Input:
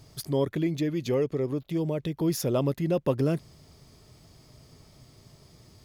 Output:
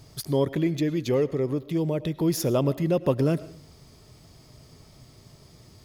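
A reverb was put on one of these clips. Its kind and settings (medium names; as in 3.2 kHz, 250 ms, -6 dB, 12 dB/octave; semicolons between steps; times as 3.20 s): algorithmic reverb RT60 0.56 s, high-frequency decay 0.7×, pre-delay 65 ms, DRR 17 dB; trim +2.5 dB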